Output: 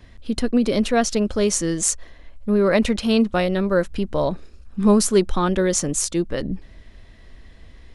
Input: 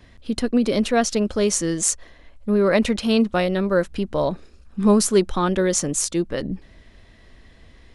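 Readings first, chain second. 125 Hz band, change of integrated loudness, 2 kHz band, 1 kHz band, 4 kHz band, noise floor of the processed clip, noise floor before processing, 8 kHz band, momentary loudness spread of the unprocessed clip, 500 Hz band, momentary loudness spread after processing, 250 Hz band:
+1.0 dB, +0.5 dB, 0.0 dB, 0.0 dB, 0.0 dB, -46 dBFS, -50 dBFS, 0.0 dB, 11 LU, 0.0 dB, 11 LU, +0.5 dB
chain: bass shelf 69 Hz +7 dB

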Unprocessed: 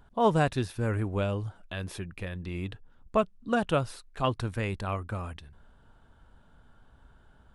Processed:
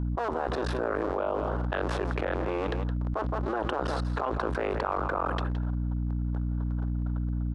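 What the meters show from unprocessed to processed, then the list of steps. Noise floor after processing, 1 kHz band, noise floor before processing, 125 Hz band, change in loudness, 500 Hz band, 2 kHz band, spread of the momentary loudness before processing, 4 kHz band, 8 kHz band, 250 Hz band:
-31 dBFS, +1.5 dB, -60 dBFS, +1.5 dB, +0.5 dB, +1.0 dB, +1.5 dB, 12 LU, -2.0 dB, no reading, +0.5 dB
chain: cycle switcher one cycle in 2, muted; low-pass 4.1 kHz 12 dB/octave; gate -54 dBFS, range -19 dB; high-pass 330 Hz 24 dB/octave; peak limiter -23.5 dBFS, peak gain reduction 10 dB; resonant high shelf 1.7 kHz -9.5 dB, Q 1.5; hum 60 Hz, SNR 12 dB; delay 167 ms -15.5 dB; level flattener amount 100%; trim +2 dB

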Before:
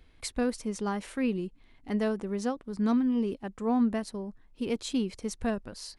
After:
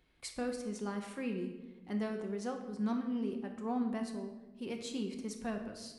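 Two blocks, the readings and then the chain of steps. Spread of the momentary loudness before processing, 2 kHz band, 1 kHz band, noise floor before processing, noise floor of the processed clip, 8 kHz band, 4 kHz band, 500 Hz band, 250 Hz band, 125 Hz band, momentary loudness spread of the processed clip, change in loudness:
10 LU, -6.5 dB, -6.5 dB, -60 dBFS, -56 dBFS, -7.0 dB, -6.5 dB, -7.0 dB, -7.5 dB, no reading, 8 LU, -7.5 dB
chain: high-pass 120 Hz 6 dB/octave; simulated room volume 600 m³, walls mixed, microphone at 0.97 m; trim -8 dB

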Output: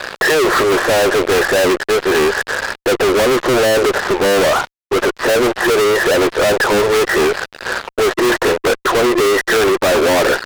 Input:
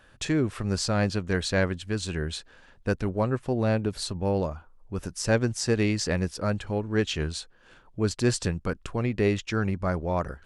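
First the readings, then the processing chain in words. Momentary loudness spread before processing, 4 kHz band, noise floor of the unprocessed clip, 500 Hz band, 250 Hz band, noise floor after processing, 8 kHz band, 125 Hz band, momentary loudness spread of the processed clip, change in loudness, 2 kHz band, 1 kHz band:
9 LU, +14.5 dB, -57 dBFS, +16.5 dB, +8.5 dB, -58 dBFS, +12.0 dB, -3.0 dB, 5 LU, +13.5 dB, +18.5 dB, +18.0 dB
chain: FFT band-pass 350–2000 Hz; dynamic bell 590 Hz, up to +6 dB, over -39 dBFS, Q 1.4; fuzz box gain 55 dB, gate -58 dBFS; trim +1.5 dB

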